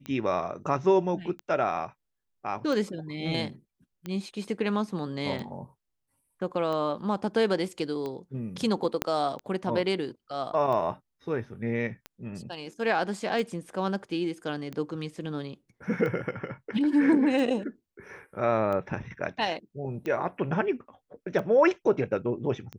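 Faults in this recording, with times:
scratch tick 45 rpm −23 dBFS
0:09.02: click −9 dBFS

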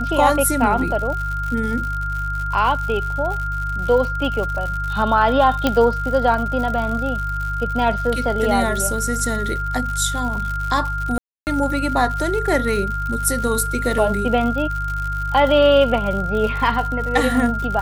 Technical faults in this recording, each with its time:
surface crackle 120 per second −26 dBFS
mains hum 50 Hz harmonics 3 −26 dBFS
whistle 1,400 Hz −24 dBFS
0:05.67: click −4 dBFS
0:11.18–0:11.47: drop-out 289 ms

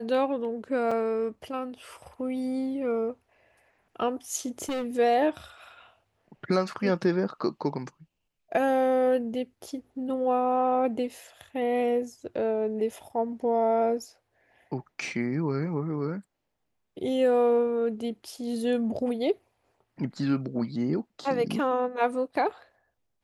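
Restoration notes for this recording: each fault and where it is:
0:00.91: drop-out 4.6 ms
0:04.58–0:04.96: clipping −27.5 dBFS

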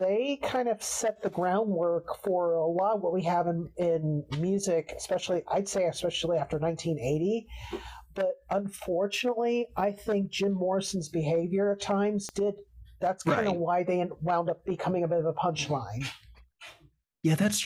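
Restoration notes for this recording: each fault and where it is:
0:12.29: click −22 dBFS

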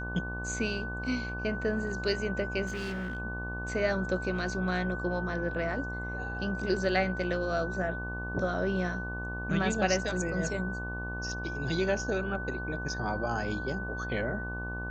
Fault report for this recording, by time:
mains buzz 60 Hz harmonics 20 −38 dBFS
whistle 1,500 Hz −37 dBFS
0:02.66–0:03.19: clipping −31.5 dBFS

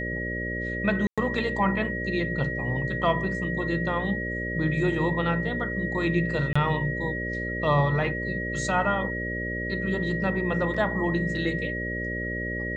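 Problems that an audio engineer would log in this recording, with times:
mains buzz 60 Hz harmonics 10 −33 dBFS
whistle 1,900 Hz −31 dBFS
0:01.07–0:01.18: drop-out 106 ms
0:06.53–0:06.55: drop-out 25 ms
0:10.74: drop-out 4.2 ms

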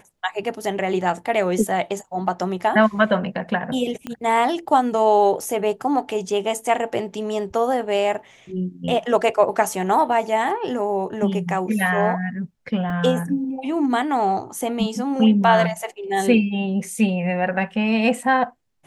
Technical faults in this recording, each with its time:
0:04.07: click −15 dBFS
0:12.90: drop-out 2.7 ms

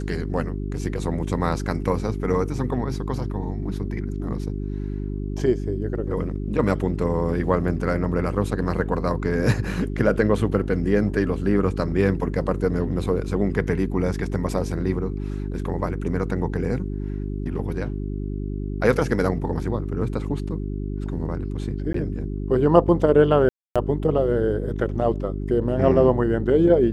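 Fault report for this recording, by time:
mains hum 50 Hz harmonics 8 −28 dBFS
0:21.93–0:21.94: drop-out 13 ms
0:23.49–0:23.76: drop-out 266 ms

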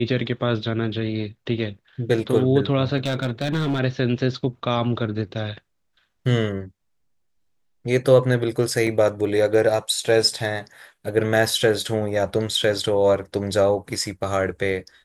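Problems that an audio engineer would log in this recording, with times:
0:02.97–0:03.80: clipping −18.5 dBFS
0:08.87: drop-out 2.5 ms

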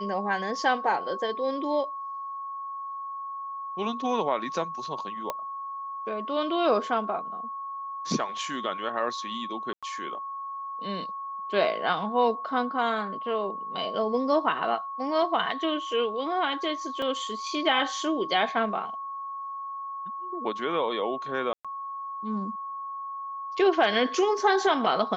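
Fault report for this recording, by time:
whistle 1,100 Hz −33 dBFS
0:05.30: click −15 dBFS
0:09.73–0:09.83: drop-out 96 ms
0:17.02: drop-out 3.1 ms
0:21.53–0:21.65: drop-out 116 ms

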